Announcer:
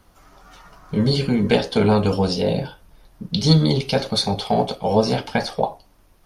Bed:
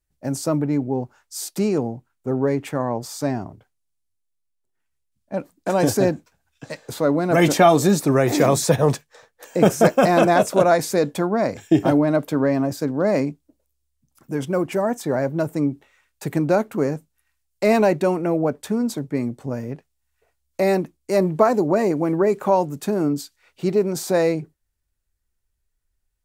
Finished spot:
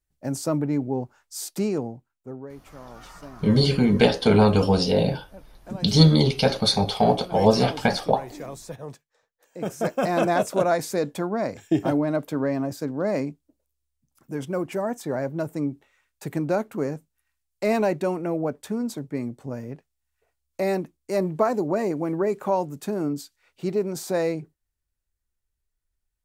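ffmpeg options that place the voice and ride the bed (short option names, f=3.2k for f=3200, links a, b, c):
-filter_complex "[0:a]adelay=2500,volume=0dB[a];[1:a]volume=11.5dB,afade=t=out:st=1.52:d=0.96:silence=0.141254,afade=t=in:st=9.5:d=0.77:silence=0.188365[b];[a][b]amix=inputs=2:normalize=0"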